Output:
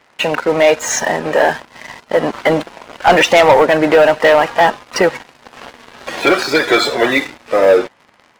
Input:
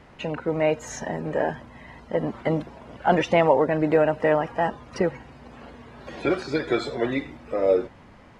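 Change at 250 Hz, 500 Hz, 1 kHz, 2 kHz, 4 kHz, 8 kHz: +7.0 dB, +10.5 dB, +12.5 dB, +16.0 dB, +19.0 dB, n/a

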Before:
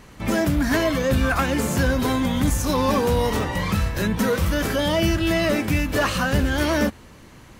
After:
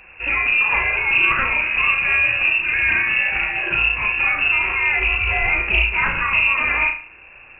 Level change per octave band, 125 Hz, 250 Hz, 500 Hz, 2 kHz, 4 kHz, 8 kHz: -10.5 dB, -18.0 dB, -12.5 dB, +12.0 dB, +1.5 dB, under -40 dB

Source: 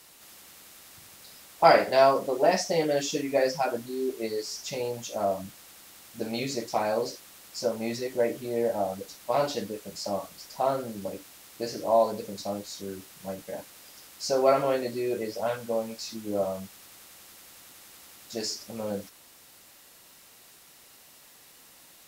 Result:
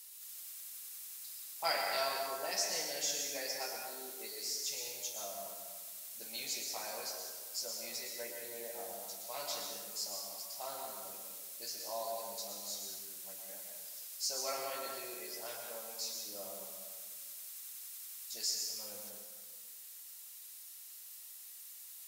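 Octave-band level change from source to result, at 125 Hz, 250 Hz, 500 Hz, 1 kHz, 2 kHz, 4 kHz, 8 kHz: -26.0, -23.5, -18.5, -15.0, -9.0, -2.5, +1.5 dB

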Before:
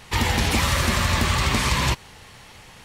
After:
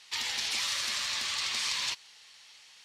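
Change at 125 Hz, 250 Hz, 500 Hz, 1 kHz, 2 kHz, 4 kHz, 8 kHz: under -35 dB, -30.5 dB, -23.5 dB, -17.5 dB, -10.5 dB, -4.0 dB, -5.5 dB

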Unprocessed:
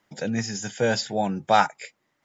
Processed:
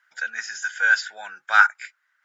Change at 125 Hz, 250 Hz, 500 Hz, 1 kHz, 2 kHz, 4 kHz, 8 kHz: under -40 dB, under -35 dB, -19.0 dB, -1.0 dB, +13.5 dB, -2.5 dB, n/a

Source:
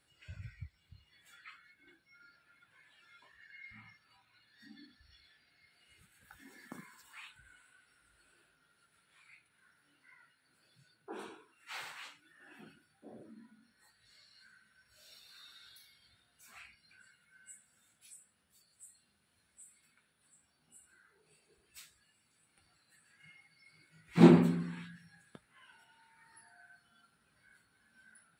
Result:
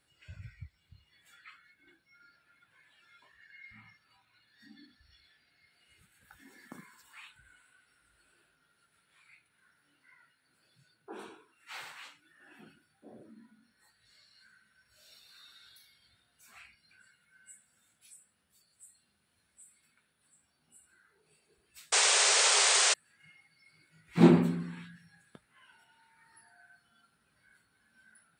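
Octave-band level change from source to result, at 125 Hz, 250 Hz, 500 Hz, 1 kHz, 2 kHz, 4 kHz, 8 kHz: 0.0, 0.0, +1.0, +7.0, +12.5, +20.0, +26.5 dB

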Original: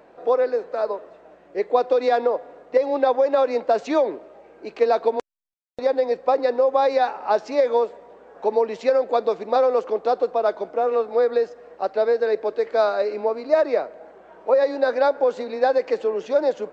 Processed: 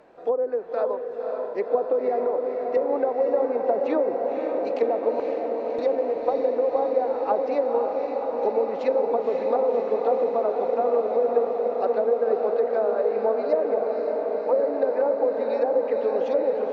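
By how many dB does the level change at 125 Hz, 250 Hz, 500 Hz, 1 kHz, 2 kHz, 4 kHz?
n/a, 0.0 dB, -1.5 dB, -4.0 dB, -9.0 dB, under -10 dB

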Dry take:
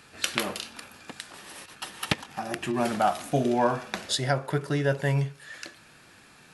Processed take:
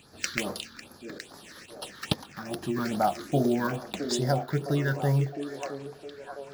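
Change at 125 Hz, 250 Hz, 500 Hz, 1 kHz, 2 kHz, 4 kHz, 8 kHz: +1.0, +1.0, -1.5, -3.0, -3.0, -4.0, -2.5 dB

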